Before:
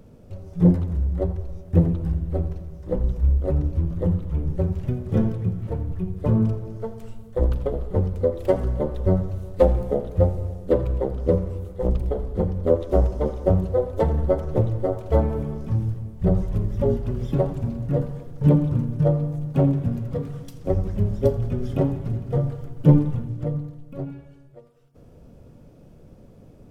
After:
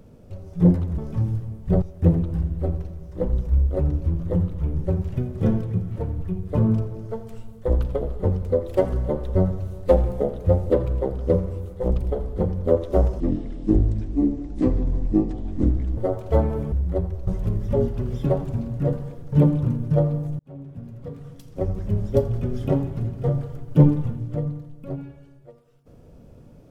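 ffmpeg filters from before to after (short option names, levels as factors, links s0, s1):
-filter_complex "[0:a]asplit=9[s0][s1][s2][s3][s4][s5][s6][s7][s8];[s0]atrim=end=0.982[s9];[s1]atrim=start=15.518:end=16.362[s10];[s2]atrim=start=1.528:end=10.412[s11];[s3]atrim=start=10.688:end=13.194[s12];[s4]atrim=start=13.19:end=14.77,asetpts=PTS-STARTPTS,asetrate=25137,aresample=44100,atrim=end_sample=122242,asetpts=PTS-STARTPTS[s13];[s5]atrim=start=14.766:end=15.522[s14];[s6]atrim=start=0.978:end=1.532[s15];[s7]atrim=start=16.358:end=19.48,asetpts=PTS-STARTPTS,afade=t=out:st=3.118:d=0.004:c=hsin[s16];[s8]atrim=start=19.48,asetpts=PTS-STARTPTS,afade=t=in:d=1.77[s17];[s9][s10]acrossfade=d=0.004:c1=hsin:c2=hsin[s18];[s18][s11]acrossfade=d=0.004:c1=hsin:c2=hsin[s19];[s19][s12]acrossfade=d=0.004:c1=hsin:c2=hsin[s20];[s20][s13]acrossfade=d=0.004:c1=hsin:c2=hsin[s21];[s21][s14]acrossfade=d=0.004:c1=hsin:c2=hsin[s22];[s22][s15]acrossfade=d=0.004:c1=hsin:c2=hsin[s23];[s16][s17]concat=n=2:v=0:a=1[s24];[s23][s24]acrossfade=d=0.004:c1=hsin:c2=hsin"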